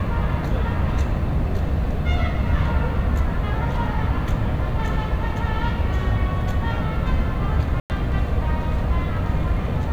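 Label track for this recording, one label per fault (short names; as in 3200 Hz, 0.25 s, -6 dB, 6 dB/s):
7.800000	7.900000	gap 99 ms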